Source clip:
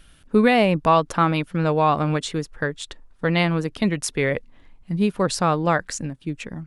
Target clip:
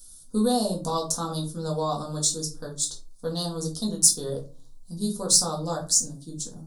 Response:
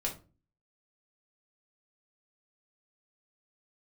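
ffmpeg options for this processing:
-filter_complex "[0:a]aexciter=amount=9.2:drive=8.6:freq=4.1k,asuperstop=centerf=2200:order=4:qfactor=0.84[a];[1:a]atrim=start_sample=2205[b];[a][b]afir=irnorm=-1:irlink=0,volume=-13dB"

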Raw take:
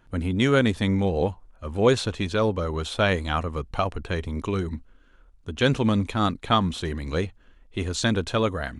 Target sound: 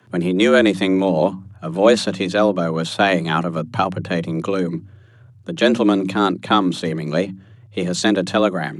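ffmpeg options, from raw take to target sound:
-filter_complex "[0:a]apsyclip=11.5dB,acrossover=split=320|790[a][b][c];[a]bandreject=f=50:t=h:w=6,bandreject=f=100:t=h:w=6,bandreject=f=150:t=h:w=6,bandreject=f=200:t=h:w=6[d];[c]dynaudnorm=f=720:g=5:m=11.5dB[e];[d][b][e]amix=inputs=3:normalize=0,afreqshift=89,volume=-4.5dB"

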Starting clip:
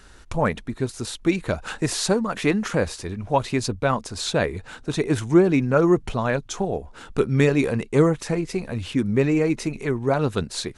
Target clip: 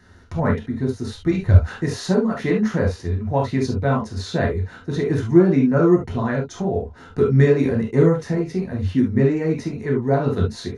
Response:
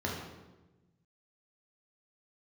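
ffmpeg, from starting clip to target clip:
-filter_complex "[0:a]asettb=1/sr,asplit=3[a][b][c];[a]atrim=end=1.104[d];[b]atrim=start=1.1:end=1.6,asetpts=PTS-STARTPTS,afade=t=in:d=0.004:c=qsin,afade=t=out:st=0.496:d=0.004:c=qsin,lowshelf=f=140:t=q:w=1.5:g=11[e];[c]atrim=start=1.596[f];[d][e]acrossfade=d=0.004:c1=hsin:c2=qsin[g];[g][f]acrossfade=d=0.004:c1=qsin:c2=hsin[h];[1:a]atrim=start_sample=2205,atrim=end_sample=3528[i];[h][i]afir=irnorm=-1:irlink=0,volume=-7dB"

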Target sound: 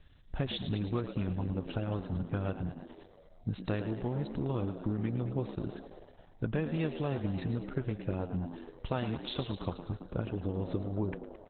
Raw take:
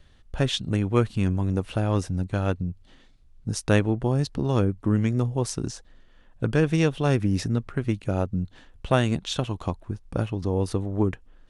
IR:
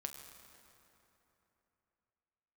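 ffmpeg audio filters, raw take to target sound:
-filter_complex "[0:a]acompressor=threshold=-25dB:ratio=6,asplit=2[a][b];[b]asplit=8[c][d][e][f][g][h][i][j];[c]adelay=110,afreqshift=77,volume=-10dB[k];[d]adelay=220,afreqshift=154,volume=-14dB[l];[e]adelay=330,afreqshift=231,volume=-18dB[m];[f]adelay=440,afreqshift=308,volume=-22dB[n];[g]adelay=550,afreqshift=385,volume=-26.1dB[o];[h]adelay=660,afreqshift=462,volume=-30.1dB[p];[i]adelay=770,afreqshift=539,volume=-34.1dB[q];[j]adelay=880,afreqshift=616,volume=-38.1dB[r];[k][l][m][n][o][p][q][r]amix=inputs=8:normalize=0[s];[a][s]amix=inputs=2:normalize=0,volume=-3.5dB" -ar 48000 -c:a libopus -b:a 8k

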